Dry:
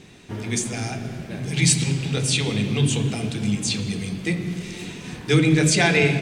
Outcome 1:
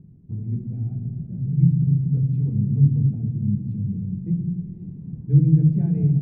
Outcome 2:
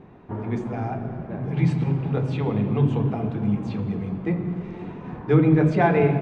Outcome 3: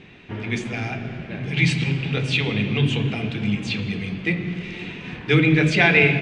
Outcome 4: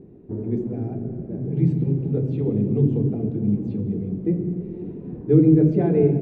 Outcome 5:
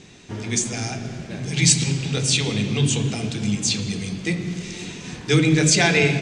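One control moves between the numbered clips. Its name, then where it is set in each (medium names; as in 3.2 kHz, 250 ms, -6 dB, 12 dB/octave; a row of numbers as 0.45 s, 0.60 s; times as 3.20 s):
resonant low-pass, frequency: 150 Hz, 1 kHz, 2.6 kHz, 390 Hz, 6.8 kHz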